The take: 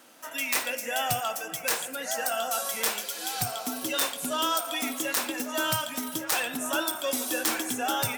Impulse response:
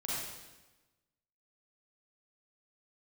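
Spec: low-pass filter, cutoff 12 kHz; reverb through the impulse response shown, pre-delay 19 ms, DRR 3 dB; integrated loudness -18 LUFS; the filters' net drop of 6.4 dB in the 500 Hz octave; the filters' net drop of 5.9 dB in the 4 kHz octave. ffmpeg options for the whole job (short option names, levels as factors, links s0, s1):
-filter_complex "[0:a]lowpass=12000,equalizer=f=500:t=o:g=-8.5,equalizer=f=4000:t=o:g=-8,asplit=2[s0][s1];[1:a]atrim=start_sample=2205,adelay=19[s2];[s1][s2]afir=irnorm=-1:irlink=0,volume=0.473[s3];[s0][s3]amix=inputs=2:normalize=0,volume=3.98"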